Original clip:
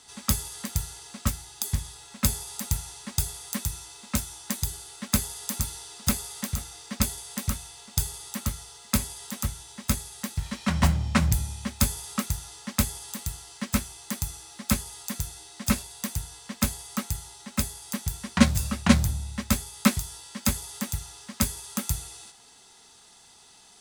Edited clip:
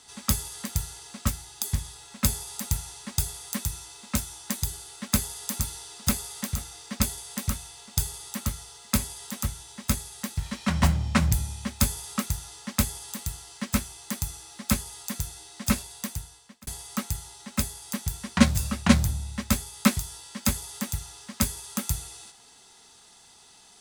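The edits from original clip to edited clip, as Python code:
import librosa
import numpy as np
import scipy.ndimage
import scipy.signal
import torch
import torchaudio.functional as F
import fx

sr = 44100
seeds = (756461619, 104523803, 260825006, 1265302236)

y = fx.edit(x, sr, fx.fade_out_span(start_s=15.94, length_s=0.73), tone=tone)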